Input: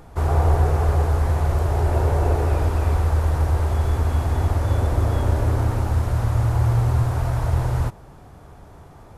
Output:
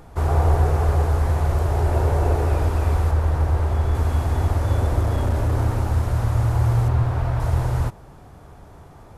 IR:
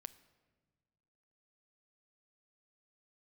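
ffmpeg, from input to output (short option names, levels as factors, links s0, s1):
-filter_complex "[0:a]asettb=1/sr,asplit=3[s0][s1][s2];[s0]atrim=end=3.114[s3];[s1]atrim=start=3.11:end=3.95,asetpts=PTS-STARTPTS,afade=t=in:d=0.004:c=qsin,afade=t=out:st=0.836:d=0.004:c=qsin,highshelf=f=4100:g=-6.5[s4];[s2]atrim=start=3.946[s5];[s3][s4]acrossfade=d=0.004:c1=hsin:c2=qsin[s6];[s6][s5]acrossfade=d=0.004:c1=qsin:c2=hsin,asettb=1/sr,asplit=3[s7][s8][s9];[s7]atrim=end=5.004[s10];[s8]atrim=start=5:end=5.55,asetpts=PTS-STARTPTS,afade=t=in:d=0.004:c=qsin,afade=t=out:st=0.546:d=0.004:c=qsin,asoftclip=type=hard:threshold=0.168[s11];[s9]atrim=start=5.546[s12];[s10][s11]acrossfade=d=0.004:c1=hsin:c2=qsin[s13];[s13][s12]acrossfade=d=0.004:c1=qsin:c2=hsin,asettb=1/sr,asplit=3[s14][s15][s16];[s14]atrim=end=6.884[s17];[s15]atrim=start=6.88:end=7.4,asetpts=PTS-STARTPTS,afade=t=in:d=0.004:c=qsin,afade=t=out:st=0.516:d=0.004:c=qsin,acrossover=split=4200[s18][s19];[s19]acompressor=threshold=0.00141:ratio=4:attack=1:release=60[s20];[s18][s20]amix=inputs=2:normalize=0[s21];[s16]atrim=start=7.396[s22];[s17][s21]acrossfade=d=0.004:c1=hsin:c2=qsin[s23];[s23][s22]acrossfade=d=0.004:c1=qsin:c2=hsin"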